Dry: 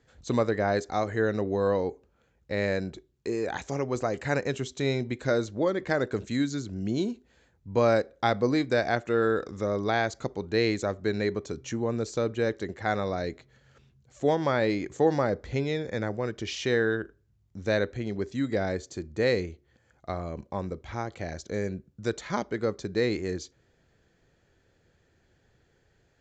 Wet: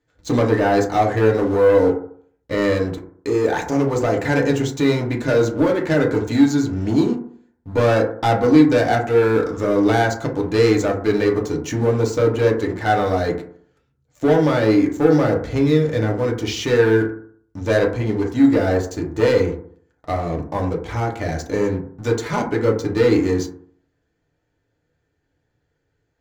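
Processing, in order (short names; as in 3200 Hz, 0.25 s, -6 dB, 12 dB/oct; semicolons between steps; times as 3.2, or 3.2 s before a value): 14.41–16.7 bell 1100 Hz -4 dB 2.1 oct; sample leveller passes 3; FDN reverb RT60 0.56 s, low-frequency decay 1×, high-frequency decay 0.3×, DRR -1 dB; gain -3.5 dB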